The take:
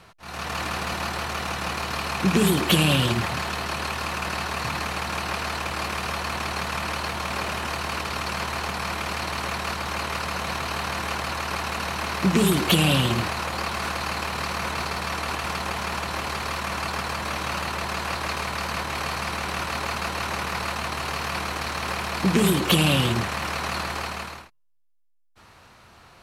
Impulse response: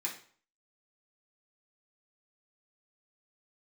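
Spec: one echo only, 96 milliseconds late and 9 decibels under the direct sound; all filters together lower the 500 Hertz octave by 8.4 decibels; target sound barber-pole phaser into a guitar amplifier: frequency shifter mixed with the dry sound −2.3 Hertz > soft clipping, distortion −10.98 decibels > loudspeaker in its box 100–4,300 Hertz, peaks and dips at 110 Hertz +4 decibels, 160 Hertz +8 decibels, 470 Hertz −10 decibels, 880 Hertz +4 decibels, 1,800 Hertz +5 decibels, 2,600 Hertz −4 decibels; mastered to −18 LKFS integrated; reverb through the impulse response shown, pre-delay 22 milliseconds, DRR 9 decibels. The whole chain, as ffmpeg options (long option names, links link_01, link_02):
-filter_complex "[0:a]equalizer=frequency=500:width_type=o:gain=-8.5,aecho=1:1:96:0.355,asplit=2[link_01][link_02];[1:a]atrim=start_sample=2205,adelay=22[link_03];[link_02][link_03]afir=irnorm=-1:irlink=0,volume=-11dB[link_04];[link_01][link_04]amix=inputs=2:normalize=0,asplit=2[link_05][link_06];[link_06]afreqshift=-2.3[link_07];[link_05][link_07]amix=inputs=2:normalize=1,asoftclip=threshold=-23dB,highpass=100,equalizer=frequency=110:width_type=q:width=4:gain=4,equalizer=frequency=160:width_type=q:width=4:gain=8,equalizer=frequency=470:width_type=q:width=4:gain=-10,equalizer=frequency=880:width_type=q:width=4:gain=4,equalizer=frequency=1800:width_type=q:width=4:gain=5,equalizer=frequency=2600:width_type=q:width=4:gain=-4,lowpass=frequency=4300:width=0.5412,lowpass=frequency=4300:width=1.3066,volume=12dB"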